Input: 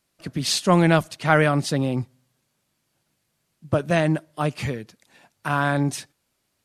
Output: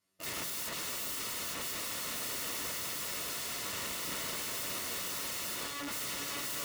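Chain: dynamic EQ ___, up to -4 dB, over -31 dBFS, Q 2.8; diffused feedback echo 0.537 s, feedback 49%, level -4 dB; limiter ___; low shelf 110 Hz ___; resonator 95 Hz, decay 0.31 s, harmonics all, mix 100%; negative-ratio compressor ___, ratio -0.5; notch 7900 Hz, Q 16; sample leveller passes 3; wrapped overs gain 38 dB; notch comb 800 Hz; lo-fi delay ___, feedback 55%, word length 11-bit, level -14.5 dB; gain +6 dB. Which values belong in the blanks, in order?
150 Hz, -9 dBFS, -4.5 dB, -36 dBFS, 0.349 s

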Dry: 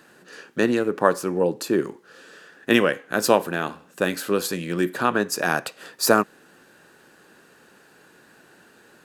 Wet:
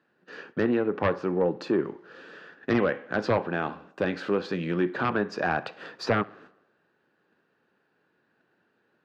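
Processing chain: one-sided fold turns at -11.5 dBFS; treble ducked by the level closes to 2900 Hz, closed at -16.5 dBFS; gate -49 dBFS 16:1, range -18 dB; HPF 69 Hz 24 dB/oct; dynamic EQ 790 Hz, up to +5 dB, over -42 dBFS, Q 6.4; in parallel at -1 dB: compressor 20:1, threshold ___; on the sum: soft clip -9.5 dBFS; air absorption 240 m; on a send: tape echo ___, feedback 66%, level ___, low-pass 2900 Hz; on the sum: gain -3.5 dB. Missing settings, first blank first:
-28 dBFS, 65 ms, -21 dB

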